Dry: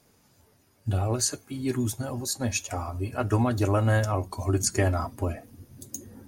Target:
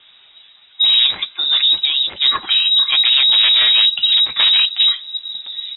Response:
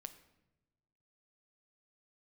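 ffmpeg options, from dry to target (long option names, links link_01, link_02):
-filter_complex "[0:a]asubboost=boost=3.5:cutoff=100,asplit=2[link_01][link_02];[link_02]alimiter=limit=-19.5dB:level=0:latency=1:release=13,volume=-2dB[link_03];[link_01][link_03]amix=inputs=2:normalize=0,asplit=2[link_04][link_05];[link_05]asetrate=35002,aresample=44100,atempo=1.25992,volume=-12dB[link_06];[link_04][link_06]amix=inputs=2:normalize=0,aeval=exprs='0.422*sin(PI/2*2.82*val(0)/0.422)':channel_layout=same,aeval=exprs='0.447*(cos(1*acos(clip(val(0)/0.447,-1,1)))-cos(1*PI/2))+0.00794*(cos(8*acos(clip(val(0)/0.447,-1,1)))-cos(8*PI/2))':channel_layout=same,lowpass=frequency=3100:width_type=q:width=0.5098,lowpass=frequency=3100:width_type=q:width=0.6013,lowpass=frequency=3100:width_type=q:width=0.9,lowpass=frequency=3100:width_type=q:width=2.563,afreqshift=-3600,asetrate=48000,aresample=44100,volume=-2dB"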